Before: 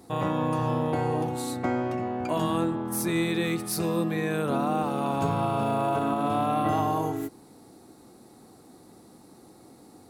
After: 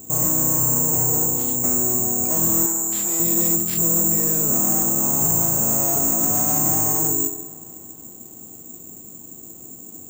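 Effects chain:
tilt shelving filter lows +7.5 dB, about 660 Hz
delay with a low-pass on its return 67 ms, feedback 65%, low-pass 950 Hz, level −13 dB
soft clipping −23 dBFS, distortion −11 dB
bad sample-rate conversion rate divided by 6×, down none, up zero stuff
0:02.66–0:03.20: meter weighting curve A
spring reverb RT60 3.8 s, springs 33 ms, chirp 75 ms, DRR 15 dB

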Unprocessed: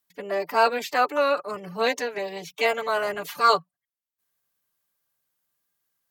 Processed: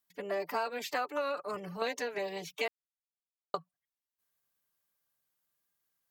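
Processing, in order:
0:01.21–0:01.82: transient designer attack −8 dB, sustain +1 dB
0:02.68–0:03.54: silence
downward compressor 12 to 1, threshold −25 dBFS, peak gain reduction 12 dB
level −4.5 dB

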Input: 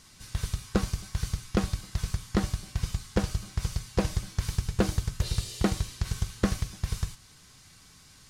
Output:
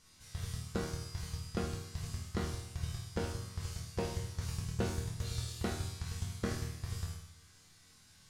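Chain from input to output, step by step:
resonators tuned to a chord D#2 minor, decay 0.77 s
level +9 dB

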